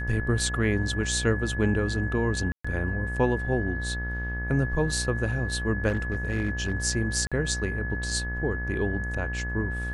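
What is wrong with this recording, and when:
mains buzz 60 Hz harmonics 37 −32 dBFS
whistle 1,700 Hz −33 dBFS
0:02.52–0:02.65: drop-out 125 ms
0:05.88–0:06.75: clipping −21.5 dBFS
0:07.27–0:07.32: drop-out 46 ms

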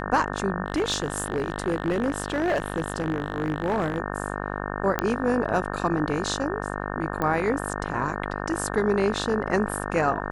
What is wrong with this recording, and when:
mains buzz 50 Hz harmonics 36 −31 dBFS
0:00.66–0:03.98: clipping −19 dBFS
0:04.99: click −9 dBFS
0:07.22: click −14 dBFS

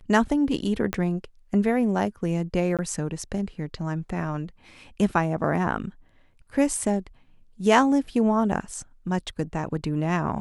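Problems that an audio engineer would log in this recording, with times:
0:00.93: click −11 dBFS
0:02.77–0:02.79: drop-out 17 ms
0:06.77: drop-out 2.3 ms

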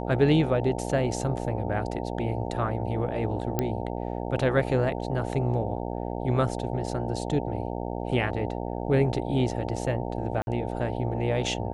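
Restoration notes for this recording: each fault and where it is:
mains buzz 60 Hz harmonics 15 −32 dBFS
0:03.59: click −11 dBFS
0:10.42–0:10.47: drop-out 51 ms

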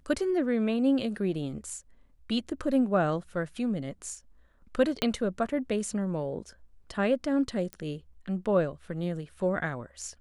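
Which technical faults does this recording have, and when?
0:05.02: click −12 dBFS
0:07.73: click −22 dBFS

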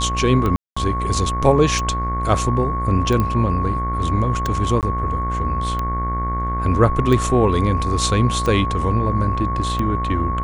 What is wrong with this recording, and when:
mains buzz 60 Hz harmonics 38 −24 dBFS
scratch tick 45 rpm −11 dBFS
whistle 1,100 Hz −23 dBFS
0:00.56–0:00.77: drop-out 205 ms
0:03.20: click −9 dBFS
0:04.81–0:04.83: drop-out 18 ms

